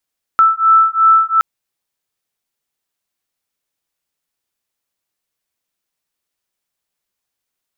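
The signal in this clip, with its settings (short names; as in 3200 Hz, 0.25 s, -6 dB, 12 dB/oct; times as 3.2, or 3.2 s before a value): beating tones 1320 Hz, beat 2.8 Hz, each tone -11 dBFS 1.02 s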